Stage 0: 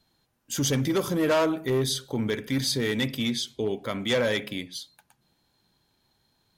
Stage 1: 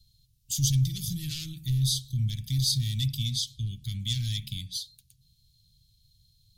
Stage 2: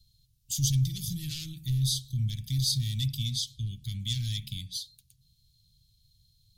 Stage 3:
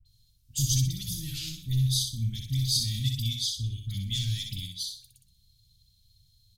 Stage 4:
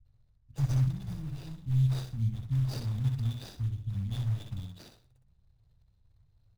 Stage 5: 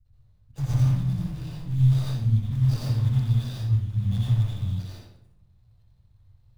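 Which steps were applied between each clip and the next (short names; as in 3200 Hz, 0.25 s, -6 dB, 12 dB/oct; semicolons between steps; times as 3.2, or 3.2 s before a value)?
Chebyshev band-stop 130–3800 Hz, order 3; low shelf 120 Hz +12 dB; in parallel at -2.5 dB: compressor, threshold -36 dBFS, peak gain reduction 13.5 dB
bell 1000 Hz -2.5 dB 1.5 oct; gain -1.5 dB
flange 1.6 Hz, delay 2.5 ms, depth 1.4 ms, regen -42%; dispersion highs, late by 58 ms, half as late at 1600 Hz; on a send: feedback echo 62 ms, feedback 32%, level -5 dB; on the sum: gain +5 dB
median filter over 41 samples
reverb RT60 0.70 s, pre-delay 81 ms, DRR -4.5 dB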